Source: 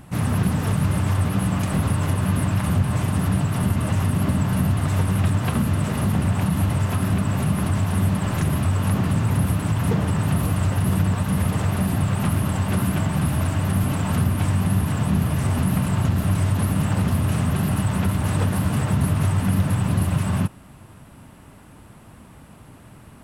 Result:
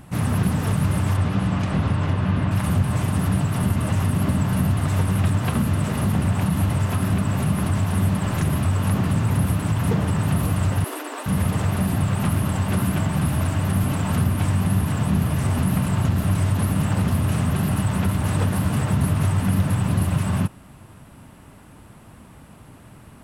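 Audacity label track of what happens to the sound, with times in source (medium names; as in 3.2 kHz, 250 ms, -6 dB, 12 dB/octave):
1.160000	2.500000	low-pass 6.5 kHz -> 3.5 kHz
10.840000	11.260000	steep high-pass 270 Hz 96 dB/octave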